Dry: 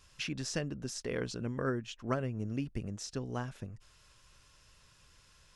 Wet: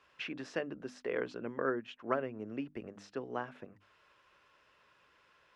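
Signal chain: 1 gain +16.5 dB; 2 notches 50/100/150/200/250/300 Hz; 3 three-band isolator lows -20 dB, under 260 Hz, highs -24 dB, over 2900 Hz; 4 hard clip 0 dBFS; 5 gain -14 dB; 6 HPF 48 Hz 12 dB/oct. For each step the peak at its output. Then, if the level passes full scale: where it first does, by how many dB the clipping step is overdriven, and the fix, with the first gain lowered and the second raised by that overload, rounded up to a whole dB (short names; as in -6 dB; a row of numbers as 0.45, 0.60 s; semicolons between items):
-1.5, -3.0, -3.0, -3.0, -17.0, -17.5 dBFS; no overload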